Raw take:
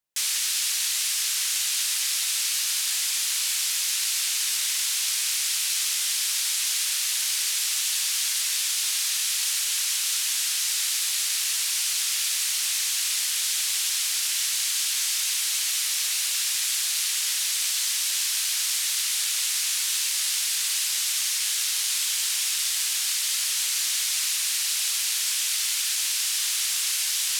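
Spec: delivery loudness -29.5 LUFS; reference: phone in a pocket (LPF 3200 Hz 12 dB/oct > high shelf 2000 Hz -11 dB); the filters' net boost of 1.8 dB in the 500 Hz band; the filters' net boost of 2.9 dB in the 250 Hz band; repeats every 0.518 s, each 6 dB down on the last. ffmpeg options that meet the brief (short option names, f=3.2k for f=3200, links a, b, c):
-af "lowpass=3.2k,equalizer=f=250:t=o:g=3,equalizer=f=500:t=o:g=3,highshelf=f=2k:g=-11,aecho=1:1:518|1036|1554|2072|2590|3108:0.501|0.251|0.125|0.0626|0.0313|0.0157,volume=8.5dB"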